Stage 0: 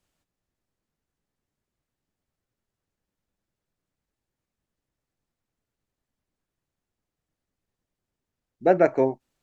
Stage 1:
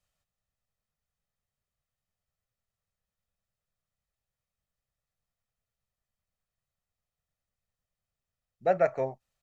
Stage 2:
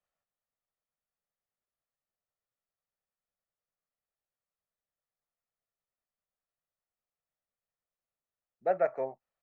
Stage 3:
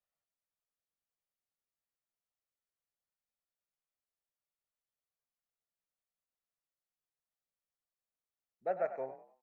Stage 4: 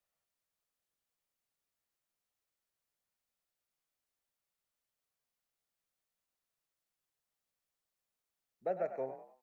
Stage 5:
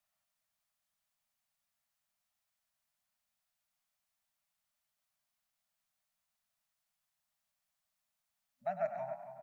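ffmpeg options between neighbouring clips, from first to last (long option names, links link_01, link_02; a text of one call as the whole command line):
ffmpeg -i in.wav -af "equalizer=frequency=310:width=1.6:gain=-12,aecho=1:1:1.6:0.37,volume=-5dB" out.wav
ffmpeg -i in.wav -filter_complex "[0:a]acrossover=split=230 2200:gain=0.178 1 0.178[link_01][link_02][link_03];[link_01][link_02][link_03]amix=inputs=3:normalize=0,volume=-3dB" out.wav
ffmpeg -i in.wav -filter_complex "[0:a]asplit=4[link_01][link_02][link_03][link_04];[link_02]adelay=98,afreqshift=37,volume=-12dB[link_05];[link_03]adelay=196,afreqshift=74,volume=-21.6dB[link_06];[link_04]adelay=294,afreqshift=111,volume=-31.3dB[link_07];[link_01][link_05][link_06][link_07]amix=inputs=4:normalize=0,volume=-6.5dB" out.wav
ffmpeg -i in.wav -filter_complex "[0:a]acrossover=split=490|3000[link_01][link_02][link_03];[link_02]acompressor=threshold=-45dB:ratio=6[link_04];[link_01][link_04][link_03]amix=inputs=3:normalize=0,volume=4.5dB" out.wav
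ffmpeg -i in.wav -filter_complex "[0:a]lowshelf=frequency=160:gain=-4.5,asplit=2[link_01][link_02];[link_02]adelay=276,lowpass=frequency=1900:poles=1,volume=-9dB,asplit=2[link_03][link_04];[link_04]adelay=276,lowpass=frequency=1900:poles=1,volume=0.25,asplit=2[link_05][link_06];[link_06]adelay=276,lowpass=frequency=1900:poles=1,volume=0.25[link_07];[link_01][link_03][link_05][link_07]amix=inputs=4:normalize=0,afftfilt=real='re*(1-between(b*sr/4096,250,580))':imag='im*(1-between(b*sr/4096,250,580))':win_size=4096:overlap=0.75,volume=3dB" out.wav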